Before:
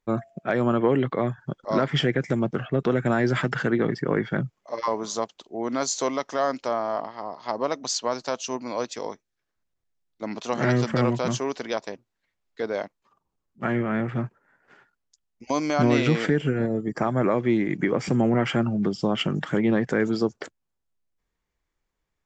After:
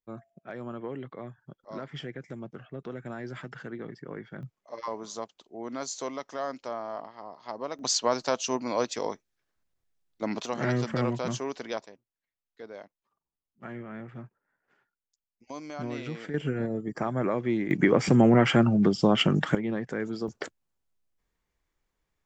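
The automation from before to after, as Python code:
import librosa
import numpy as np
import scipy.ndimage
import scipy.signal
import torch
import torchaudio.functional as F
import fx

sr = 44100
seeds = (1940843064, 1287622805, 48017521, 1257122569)

y = fx.gain(x, sr, db=fx.steps((0.0, -16.0), (4.43, -9.0), (7.79, 1.0), (10.46, -5.5), (11.86, -15.0), (16.34, -5.5), (17.71, 2.5), (19.55, -9.0), (20.28, 0.5)))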